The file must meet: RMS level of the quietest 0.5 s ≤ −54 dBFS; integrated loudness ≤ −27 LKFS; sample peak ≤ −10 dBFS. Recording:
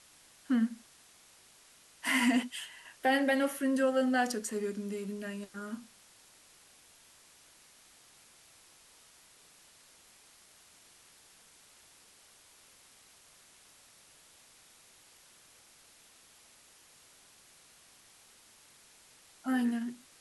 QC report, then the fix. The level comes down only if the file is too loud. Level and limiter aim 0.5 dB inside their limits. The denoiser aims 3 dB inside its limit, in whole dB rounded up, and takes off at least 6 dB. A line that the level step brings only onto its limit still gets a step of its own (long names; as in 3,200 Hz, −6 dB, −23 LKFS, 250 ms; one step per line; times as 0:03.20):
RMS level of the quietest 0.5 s −60 dBFS: in spec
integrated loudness −32.0 LKFS: in spec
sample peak −17.5 dBFS: in spec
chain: no processing needed